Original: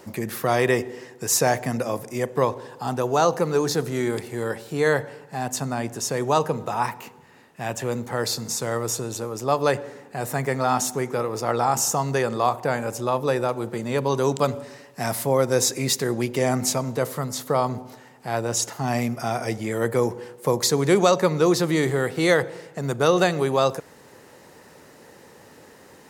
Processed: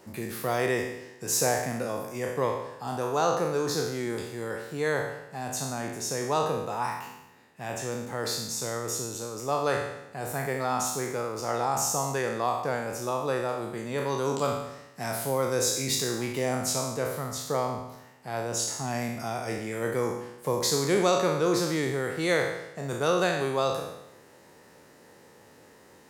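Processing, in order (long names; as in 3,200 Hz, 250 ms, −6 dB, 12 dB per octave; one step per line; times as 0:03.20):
peak hold with a decay on every bin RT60 0.89 s
level −8 dB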